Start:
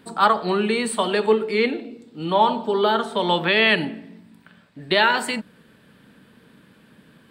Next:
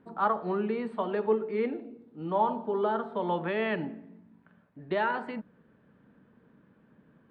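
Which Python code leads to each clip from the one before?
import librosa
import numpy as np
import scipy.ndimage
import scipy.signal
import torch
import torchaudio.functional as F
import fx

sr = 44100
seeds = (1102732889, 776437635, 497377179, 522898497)

y = scipy.signal.sosfilt(scipy.signal.butter(2, 1300.0, 'lowpass', fs=sr, output='sos'), x)
y = F.gain(torch.from_numpy(y), -8.0).numpy()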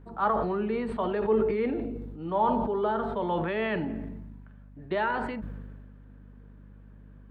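y = fx.add_hum(x, sr, base_hz=50, snr_db=19)
y = fx.sustainer(y, sr, db_per_s=29.0)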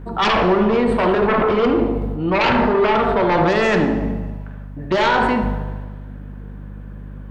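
y = fx.fold_sine(x, sr, drive_db=11, ceiling_db=-14.0)
y = fx.echo_banded(y, sr, ms=74, feedback_pct=66, hz=700.0, wet_db=-5)
y = fx.rev_double_slope(y, sr, seeds[0], early_s=0.91, late_s=2.3, knee_db=-18, drr_db=8.5)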